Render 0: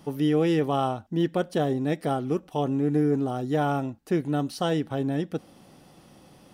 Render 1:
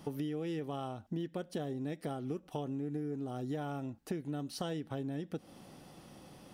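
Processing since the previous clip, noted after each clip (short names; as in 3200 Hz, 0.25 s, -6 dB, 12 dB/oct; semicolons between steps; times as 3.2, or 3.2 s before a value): dynamic EQ 960 Hz, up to -4 dB, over -36 dBFS, Q 0.83; compressor 10:1, threshold -33 dBFS, peak gain reduction 14 dB; gain -1.5 dB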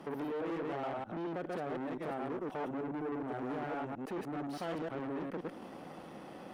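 reverse delay 0.104 s, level -1 dB; tube stage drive 43 dB, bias 0.5; three-band isolator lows -15 dB, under 210 Hz, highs -15 dB, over 2500 Hz; gain +9 dB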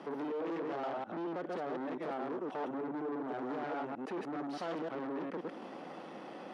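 soft clip -34 dBFS, distortion -17 dB; BPF 230–5800 Hz; gain +3 dB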